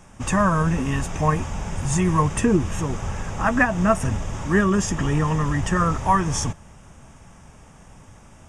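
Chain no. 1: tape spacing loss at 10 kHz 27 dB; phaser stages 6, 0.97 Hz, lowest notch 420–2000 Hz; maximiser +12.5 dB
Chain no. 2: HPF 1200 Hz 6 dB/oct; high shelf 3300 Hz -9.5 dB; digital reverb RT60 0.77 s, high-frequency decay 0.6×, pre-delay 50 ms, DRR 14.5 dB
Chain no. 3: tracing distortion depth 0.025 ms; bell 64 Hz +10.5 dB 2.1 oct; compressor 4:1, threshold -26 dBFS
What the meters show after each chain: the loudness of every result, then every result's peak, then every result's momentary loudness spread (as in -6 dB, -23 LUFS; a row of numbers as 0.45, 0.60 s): -13.0, -30.0, -29.0 LUFS; -1.0, -10.0, -15.0 dBFS; 7, 13, 15 LU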